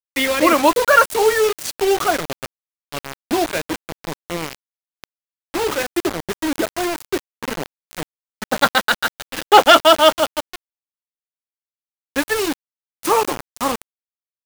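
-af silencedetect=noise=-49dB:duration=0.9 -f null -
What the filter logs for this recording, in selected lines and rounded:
silence_start: 10.56
silence_end: 12.16 | silence_duration: 1.60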